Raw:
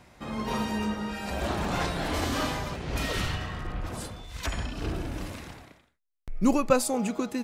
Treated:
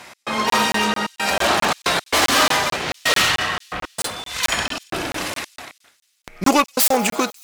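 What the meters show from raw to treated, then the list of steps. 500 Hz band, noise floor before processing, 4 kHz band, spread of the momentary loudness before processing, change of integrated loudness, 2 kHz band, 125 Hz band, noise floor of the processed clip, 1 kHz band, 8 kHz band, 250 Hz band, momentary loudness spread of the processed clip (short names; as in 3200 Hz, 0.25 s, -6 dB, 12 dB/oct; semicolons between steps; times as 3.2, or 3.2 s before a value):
+7.0 dB, -69 dBFS, +16.5 dB, 13 LU, +11.0 dB, +15.5 dB, -2.0 dB, under -85 dBFS, +13.0 dB, +15.0 dB, +4.0 dB, 11 LU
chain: self-modulated delay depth 0.26 ms; HPF 1200 Hz 6 dB/oct; in parallel at -7 dB: sine folder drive 12 dB, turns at -12 dBFS; on the sum: step gate "x.xxxxxx.xxxx." 113 bpm -60 dB; on a send: thin delay 93 ms, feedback 78%, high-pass 4500 Hz, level -21.5 dB; on the sum: crackling interface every 0.22 s, samples 1024, zero, from 0.5; gain +8 dB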